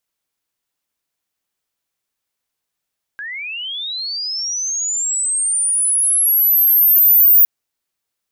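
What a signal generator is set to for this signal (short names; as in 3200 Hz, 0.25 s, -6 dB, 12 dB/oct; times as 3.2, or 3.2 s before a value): chirp linear 1600 Hz -> 15000 Hz -25.5 dBFS -> -6 dBFS 4.26 s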